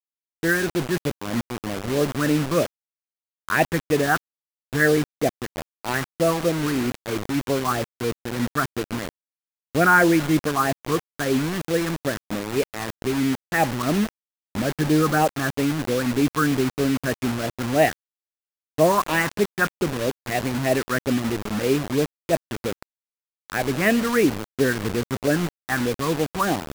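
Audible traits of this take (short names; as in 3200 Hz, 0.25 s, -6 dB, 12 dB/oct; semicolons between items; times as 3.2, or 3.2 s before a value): phasing stages 4, 3.1 Hz, lowest notch 580–1300 Hz; a quantiser's noise floor 6-bit, dither none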